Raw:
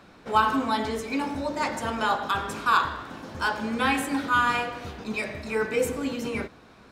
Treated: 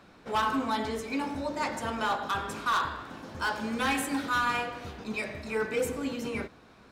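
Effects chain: 3.47–4.38 high shelf 4000 Hz +4.5 dB; hard clip -19 dBFS, distortion -13 dB; gain -3.5 dB

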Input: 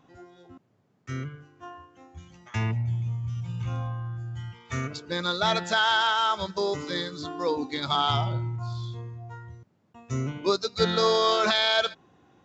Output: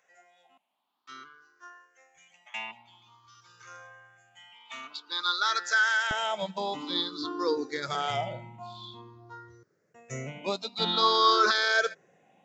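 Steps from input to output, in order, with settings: moving spectral ripple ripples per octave 0.53, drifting +0.5 Hz, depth 16 dB; HPF 1000 Hz 12 dB/oct, from 6.11 s 240 Hz; gain -3.5 dB

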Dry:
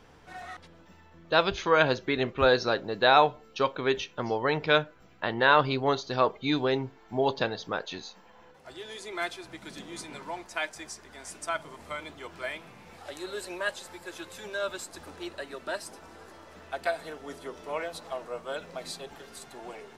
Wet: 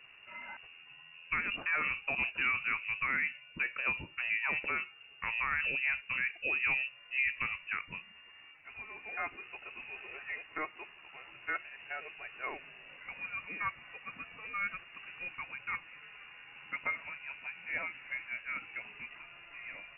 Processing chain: low shelf 150 Hz +6 dB; limiter -18.5 dBFS, peak gain reduction 11.5 dB; inverted band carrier 2800 Hz; gain -4.5 dB

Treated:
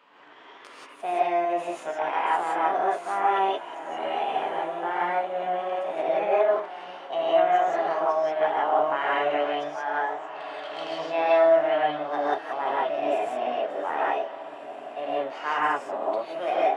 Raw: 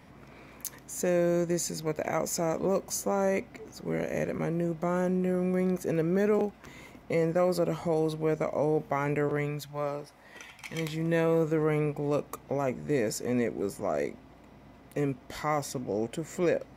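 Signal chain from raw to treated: tracing distortion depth 0.029 ms; Bessel high-pass 610 Hz, order 4; high shelf 4600 Hz -6 dB; formant shift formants +6 st; tape spacing loss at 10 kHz 29 dB; diffused feedback echo 1.538 s, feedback 40%, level -13 dB; non-linear reverb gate 0.2 s rising, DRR -6 dB; gain +5.5 dB

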